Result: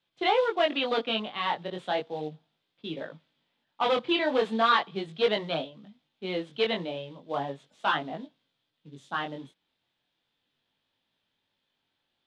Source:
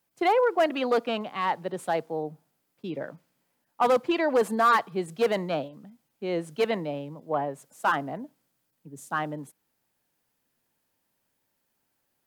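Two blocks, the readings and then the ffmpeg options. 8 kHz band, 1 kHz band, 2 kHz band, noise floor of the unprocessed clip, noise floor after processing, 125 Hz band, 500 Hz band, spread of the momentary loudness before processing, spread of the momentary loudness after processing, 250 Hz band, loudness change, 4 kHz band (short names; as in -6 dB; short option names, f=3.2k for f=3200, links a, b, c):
under -10 dB, -2.5 dB, 0.0 dB, -77 dBFS, -80 dBFS, -3.5 dB, -2.5 dB, 15 LU, 15 LU, -2.5 dB, -1.5 dB, +7.5 dB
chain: -af "acrusher=bits=6:mode=log:mix=0:aa=0.000001,flanger=delay=18.5:depth=4.6:speed=0.36,lowpass=f=3.5k:t=q:w=5.1"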